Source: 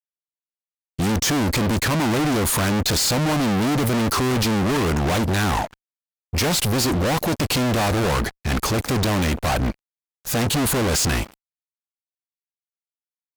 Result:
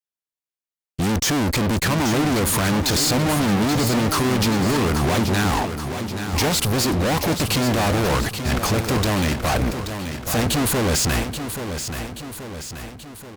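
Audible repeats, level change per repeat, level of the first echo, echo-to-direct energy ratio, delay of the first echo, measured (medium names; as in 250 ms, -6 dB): 5, -5.0 dB, -8.5 dB, -7.0 dB, 830 ms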